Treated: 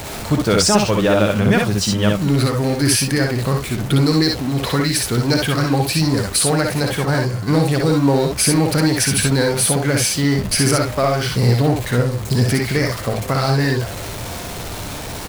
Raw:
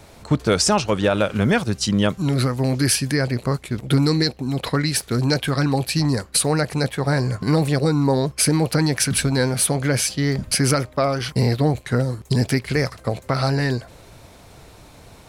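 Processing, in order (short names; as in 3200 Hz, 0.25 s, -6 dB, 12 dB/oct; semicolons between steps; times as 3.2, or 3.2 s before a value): zero-crossing step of -25.5 dBFS; 7.05–7.61 expander -17 dBFS; on a send: early reflections 57 ms -5 dB, 67 ms -5.5 dB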